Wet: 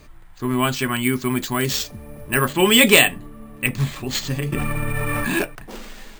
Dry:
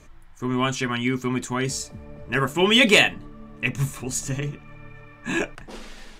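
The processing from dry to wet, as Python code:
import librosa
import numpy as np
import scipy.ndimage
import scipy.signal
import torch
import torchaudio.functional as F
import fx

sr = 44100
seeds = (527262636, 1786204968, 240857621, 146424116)

y = np.repeat(x[::4], 4)[:len(x)]
y = fx.high_shelf(y, sr, hz=5400.0, db=6.0, at=(1.03, 2.53))
y = fx.env_flatten(y, sr, amount_pct=100, at=(4.52, 5.33))
y = F.gain(torch.from_numpy(y), 3.0).numpy()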